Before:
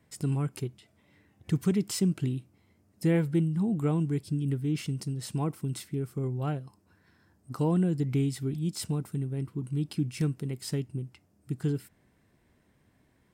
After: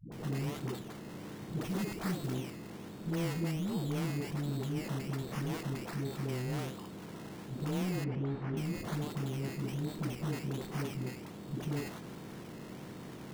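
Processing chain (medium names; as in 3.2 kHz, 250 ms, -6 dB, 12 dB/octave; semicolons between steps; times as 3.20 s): spectral levelling over time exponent 0.4; decimation with a swept rate 15×, swing 60% 1.3 Hz; saturation -21 dBFS, distortion -14 dB; phase dispersion highs, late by 120 ms, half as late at 320 Hz; 1.61–2.35 s: short-mantissa float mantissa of 2-bit; 8.04–8.57 s: low-pass 1.9 kHz 12 dB/octave; trim -8.5 dB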